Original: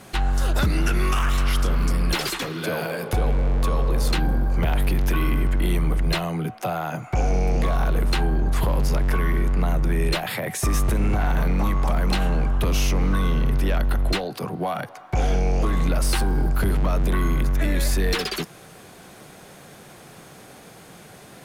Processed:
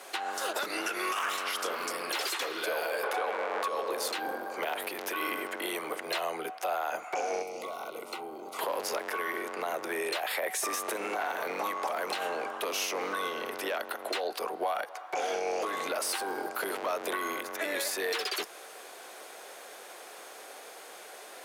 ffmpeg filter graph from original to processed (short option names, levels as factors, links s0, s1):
-filter_complex "[0:a]asettb=1/sr,asplit=3[s0][s1][s2];[s0]atrim=end=3.034[s3];[s1]atrim=start=3.03:end=3.68,asetpts=PTS-STARTPTS,afade=t=in:d=0.004:c=qsin,afade=t=out:st=0.646:d=0.004:c=qsin,highpass=160,equalizer=f=1400:t=o:w=2.4:g=10[s4];[s2]atrim=start=3.676[s5];[s3][s4]acrossfade=d=0.004:c1=hsin:c2=qsin[s6];[s6][s5]acrossfade=d=0.004:c1=qsin:c2=hsin,asettb=1/sr,asplit=3[s7][s8][s9];[s7]atrim=end=7.424[s10];[s8]atrim=start=7.42:end=8.59,asetpts=PTS-STARTPTS,afade=t=in:d=0.004:c=qsin,afade=t=out:st=1.166:d=0.004:c=qsin,acrossover=split=290|2400|7800[s11][s12][s13][s14];[s11]acompressor=threshold=0.0891:ratio=3[s15];[s12]acompressor=threshold=0.01:ratio=3[s16];[s13]acompressor=threshold=0.00224:ratio=3[s17];[s14]acompressor=threshold=0.00158:ratio=3[s18];[s15][s16][s17][s18]amix=inputs=4:normalize=0,asuperstop=centerf=1700:order=8:qfactor=3.9[s19];[s9]atrim=start=8.586[s20];[s10][s19]acrossfade=d=0.004:c1=hsin:c2=qsin[s21];[s21][s20]acrossfade=d=0.004:c1=qsin:c2=hsin,highpass=f=420:w=0.5412,highpass=f=420:w=1.3066,alimiter=limit=0.0794:level=0:latency=1:release=138"